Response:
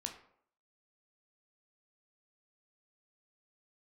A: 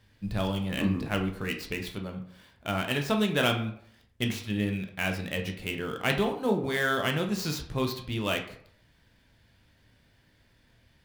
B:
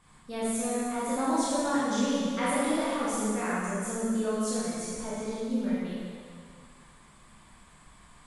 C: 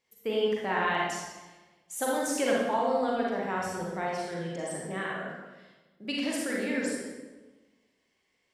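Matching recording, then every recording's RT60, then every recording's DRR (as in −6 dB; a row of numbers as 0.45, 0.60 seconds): A; 0.65, 2.0, 1.2 seconds; 3.0, −9.5, −4.0 decibels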